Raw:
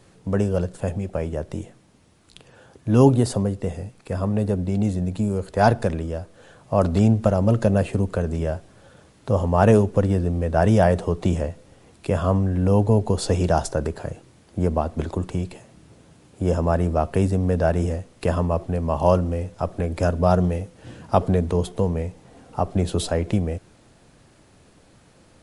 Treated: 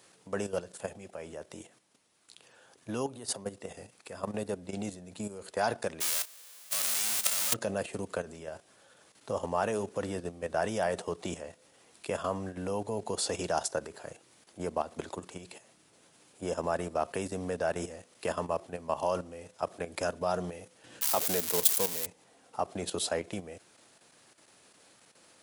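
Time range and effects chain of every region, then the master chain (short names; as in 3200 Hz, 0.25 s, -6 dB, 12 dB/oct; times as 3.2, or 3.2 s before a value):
3.06–3.46 notch 7600 Hz, Q 13 + compressor 12:1, threshold -24 dBFS
6–7.52 spectral whitening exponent 0.1 + compressor 8:1, threshold -19 dBFS
21.01–22.06 switching spikes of -14.5 dBFS + HPF 160 Hz 6 dB/oct
whole clip: level quantiser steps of 11 dB; HPF 340 Hz 6 dB/oct; tilt +2 dB/oct; gain -2.5 dB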